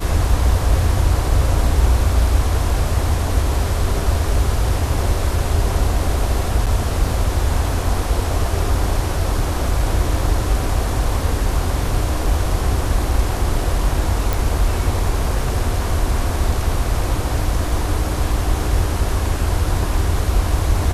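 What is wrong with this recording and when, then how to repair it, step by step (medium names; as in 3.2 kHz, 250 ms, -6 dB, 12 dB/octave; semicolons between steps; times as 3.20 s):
6.66–6.67 s: dropout 7.4 ms
14.33 s: pop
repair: de-click; interpolate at 6.66 s, 7.4 ms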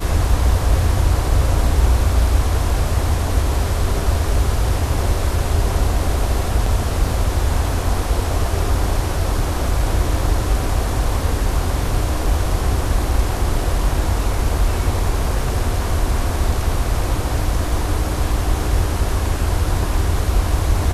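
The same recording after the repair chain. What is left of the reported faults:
nothing left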